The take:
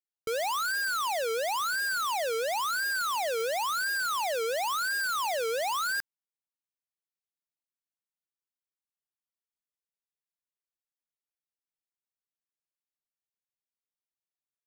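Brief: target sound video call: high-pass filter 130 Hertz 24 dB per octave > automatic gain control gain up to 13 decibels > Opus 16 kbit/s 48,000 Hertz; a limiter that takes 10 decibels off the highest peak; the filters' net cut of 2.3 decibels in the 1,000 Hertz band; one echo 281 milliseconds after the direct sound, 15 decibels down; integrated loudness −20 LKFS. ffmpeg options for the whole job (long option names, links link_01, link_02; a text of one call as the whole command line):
ffmpeg -i in.wav -af "equalizer=frequency=1000:width_type=o:gain=-3,alimiter=level_in=14dB:limit=-24dB:level=0:latency=1,volume=-14dB,highpass=frequency=130:width=0.5412,highpass=frequency=130:width=1.3066,aecho=1:1:281:0.178,dynaudnorm=maxgain=13dB,volume=19dB" -ar 48000 -c:a libopus -b:a 16k out.opus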